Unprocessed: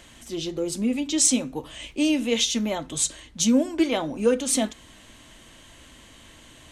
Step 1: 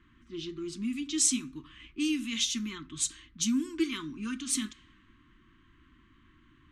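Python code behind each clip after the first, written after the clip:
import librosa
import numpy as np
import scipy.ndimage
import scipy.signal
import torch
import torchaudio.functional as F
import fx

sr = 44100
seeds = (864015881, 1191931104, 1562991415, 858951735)

y = scipy.signal.sosfilt(scipy.signal.ellip(3, 1.0, 40, [350.0, 1100.0], 'bandstop', fs=sr, output='sos'), x)
y = fx.env_lowpass(y, sr, base_hz=1200.0, full_db=-21.0)
y = fx.low_shelf(y, sr, hz=370.0, db=-3.0)
y = y * librosa.db_to_amplitude(-5.5)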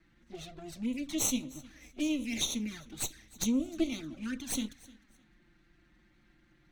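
y = fx.lower_of_two(x, sr, delay_ms=0.49)
y = fx.env_flanger(y, sr, rest_ms=6.4, full_db=-29.5)
y = fx.echo_feedback(y, sr, ms=306, feedback_pct=25, wet_db=-22.0)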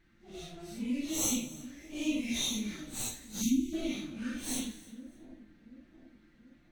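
y = fx.phase_scramble(x, sr, seeds[0], window_ms=200)
y = fx.echo_split(y, sr, split_hz=820.0, low_ms=734, high_ms=88, feedback_pct=52, wet_db=-15.5)
y = fx.spec_erase(y, sr, start_s=3.42, length_s=0.31, low_hz=350.0, high_hz=2000.0)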